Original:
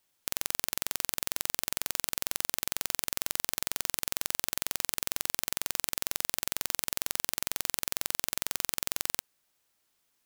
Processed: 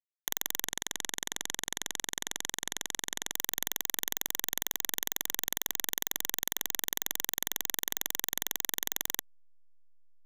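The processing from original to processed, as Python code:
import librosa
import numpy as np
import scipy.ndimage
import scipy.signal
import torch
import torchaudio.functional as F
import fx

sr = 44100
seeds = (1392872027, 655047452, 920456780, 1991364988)

y = fx.block_float(x, sr, bits=3)
y = fx.ripple_eq(y, sr, per_octave=1.1, db=15)
y = fx.echo_stepped(y, sr, ms=117, hz=2800.0, octaves=-1.4, feedback_pct=70, wet_db=-9.5)
y = fx.spec_gate(y, sr, threshold_db=-10, keep='strong')
y = fx.backlash(y, sr, play_db=-26.0)
y = fx.steep_lowpass(y, sr, hz=11000.0, slope=48, at=(0.64, 3.34))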